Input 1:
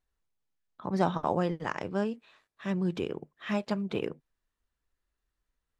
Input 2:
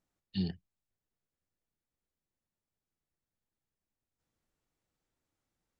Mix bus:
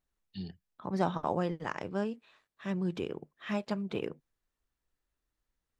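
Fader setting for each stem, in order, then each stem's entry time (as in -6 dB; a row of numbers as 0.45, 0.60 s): -3.0, -7.5 dB; 0.00, 0.00 s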